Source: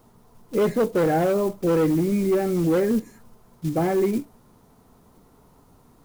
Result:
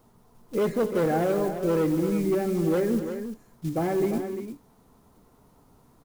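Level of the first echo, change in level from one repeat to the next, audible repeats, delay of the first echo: −16.0 dB, repeats not evenly spaced, 3, 151 ms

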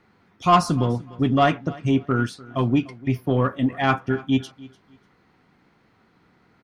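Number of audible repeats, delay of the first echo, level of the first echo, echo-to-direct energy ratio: 2, 296 ms, −21.0 dB, −21.0 dB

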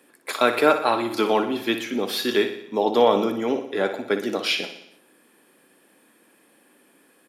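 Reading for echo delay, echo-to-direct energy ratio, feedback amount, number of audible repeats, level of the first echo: 60 ms, −8.5 dB, 58%, 6, −10.5 dB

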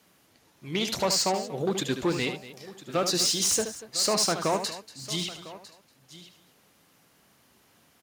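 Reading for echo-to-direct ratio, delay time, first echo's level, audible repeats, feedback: −7.5 dB, 75 ms, −9.0 dB, 5, repeats not evenly spaced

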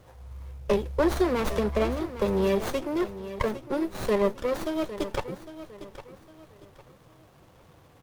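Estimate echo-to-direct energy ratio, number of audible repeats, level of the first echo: −13.0 dB, 3, −13.5 dB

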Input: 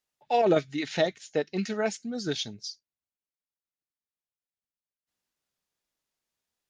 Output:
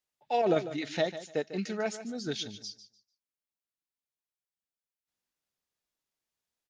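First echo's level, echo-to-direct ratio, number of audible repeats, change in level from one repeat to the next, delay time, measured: −13.0 dB, −13.0 dB, 2, −13.0 dB, 148 ms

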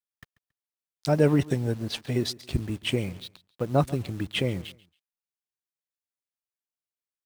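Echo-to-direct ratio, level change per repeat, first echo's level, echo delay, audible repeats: −20.0 dB, −11.0 dB, −20.5 dB, 138 ms, 2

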